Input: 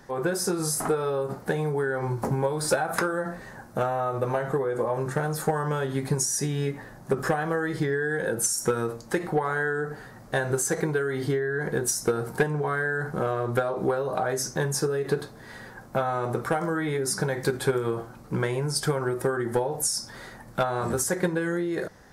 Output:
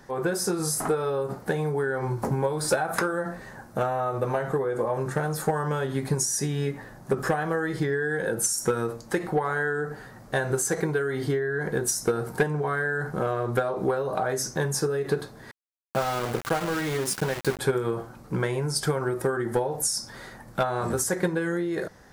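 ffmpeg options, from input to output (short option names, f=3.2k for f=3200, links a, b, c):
-filter_complex "[0:a]asettb=1/sr,asplit=3[a][b][c];[a]atrim=end=15.514[d];[b]atrim=start=15.51:end=17.59,asetpts=PTS-STARTPTS,afade=t=in:d=0.004:c=qsin,afade=t=out:st=2.076:d=0.004:c=qsin,aeval=exprs='val(0)*gte(abs(val(0)),0.0355)':c=same[e];[c]atrim=start=17.586[f];[d][e]acrossfade=d=0.004:c1=hsin:c2=qsin[g];[g][f]acrossfade=d=0.004:c1=qsin:c2=hsin"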